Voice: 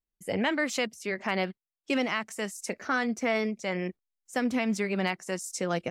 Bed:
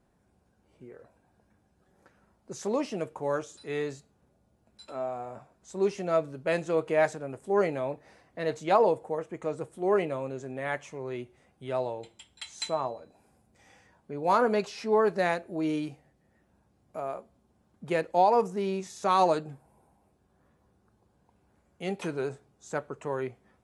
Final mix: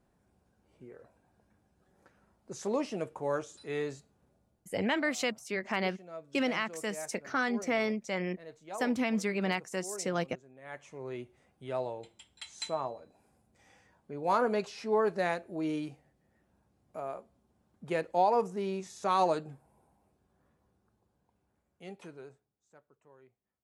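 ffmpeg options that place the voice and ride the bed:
-filter_complex "[0:a]adelay=4450,volume=-2.5dB[a];[1:a]volume=12dB,afade=t=out:st=4.37:d=0.44:silence=0.158489,afade=t=in:st=10.61:d=0.46:silence=0.188365,afade=t=out:st=20.15:d=2.52:silence=0.0668344[b];[a][b]amix=inputs=2:normalize=0"

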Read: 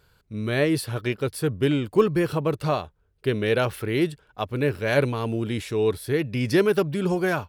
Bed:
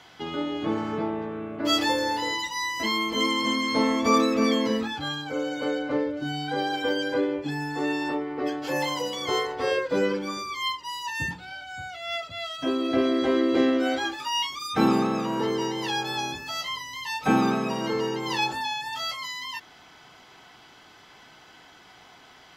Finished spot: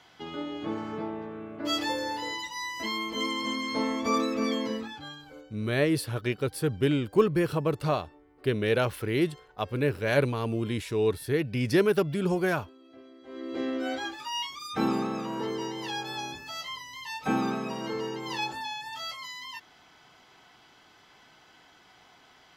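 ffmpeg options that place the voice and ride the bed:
-filter_complex "[0:a]adelay=5200,volume=-3dB[a];[1:a]volume=16.5dB,afade=t=out:st=4.62:d=0.9:silence=0.0749894,afade=t=in:st=13.24:d=0.67:silence=0.0749894[b];[a][b]amix=inputs=2:normalize=0"

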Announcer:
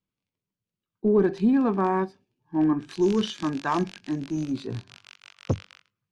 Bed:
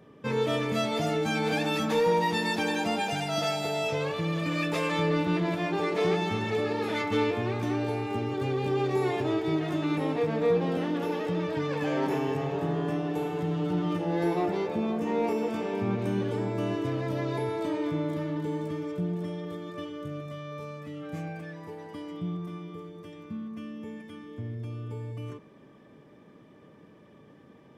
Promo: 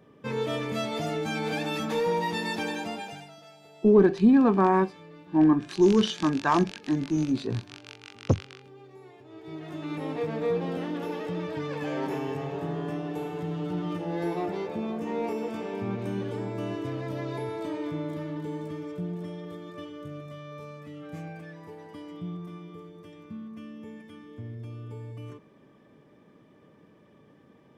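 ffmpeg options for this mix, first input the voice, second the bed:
-filter_complex "[0:a]adelay=2800,volume=2.5dB[a];[1:a]volume=17dB,afade=t=out:st=2.62:d=0.75:silence=0.1,afade=t=in:st=9.29:d=0.93:silence=0.105925[b];[a][b]amix=inputs=2:normalize=0"

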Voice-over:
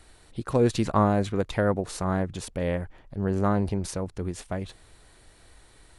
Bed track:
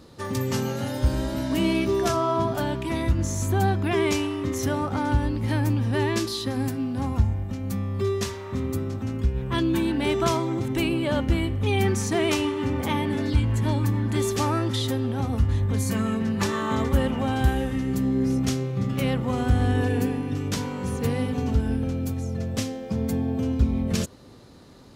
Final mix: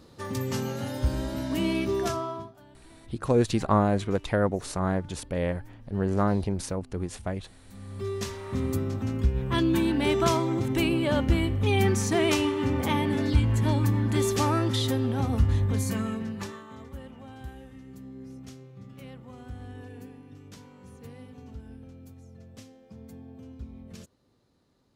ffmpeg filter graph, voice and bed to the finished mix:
-filter_complex "[0:a]adelay=2750,volume=-0.5dB[a];[1:a]volume=22.5dB,afade=t=out:st=2.02:d=0.5:silence=0.0707946,afade=t=in:st=7.67:d=0.97:silence=0.0473151,afade=t=out:st=15.55:d=1.1:silence=0.105925[b];[a][b]amix=inputs=2:normalize=0"

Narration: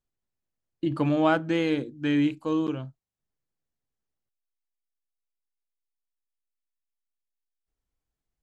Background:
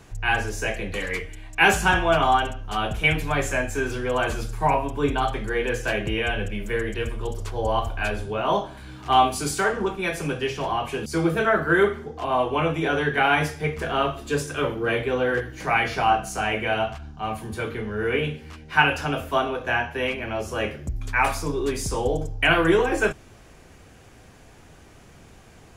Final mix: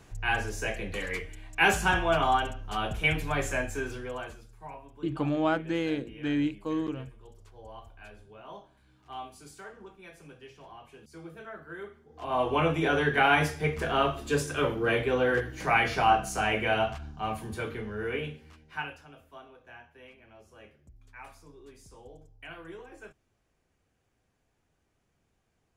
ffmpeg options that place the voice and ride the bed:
-filter_complex "[0:a]adelay=4200,volume=-4.5dB[a];[1:a]volume=15dB,afade=t=out:st=3.61:d=0.8:silence=0.133352,afade=t=in:st=12.08:d=0.43:silence=0.0944061,afade=t=out:st=17.01:d=2.04:silence=0.0668344[b];[a][b]amix=inputs=2:normalize=0"

